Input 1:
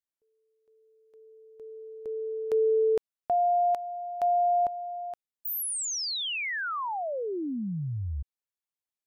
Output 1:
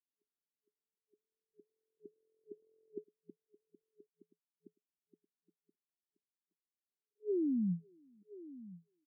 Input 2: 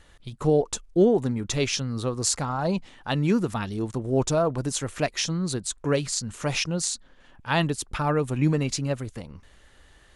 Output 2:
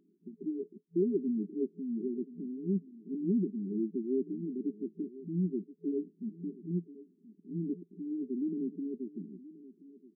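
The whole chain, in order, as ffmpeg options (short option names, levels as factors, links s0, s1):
-af "asoftclip=type=tanh:threshold=0.0631,afftfilt=real='re*between(b*sr/4096,170,430)':imag='im*between(b*sr/4096,170,430)':win_size=4096:overlap=0.75,aecho=1:1:1027:0.133"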